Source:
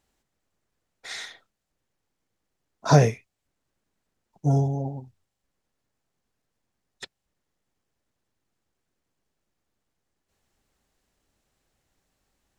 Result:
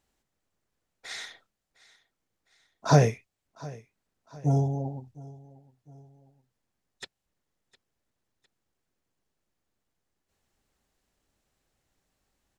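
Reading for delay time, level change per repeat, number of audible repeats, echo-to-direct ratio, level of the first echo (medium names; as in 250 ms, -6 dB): 707 ms, -6.5 dB, 2, -20.0 dB, -21.0 dB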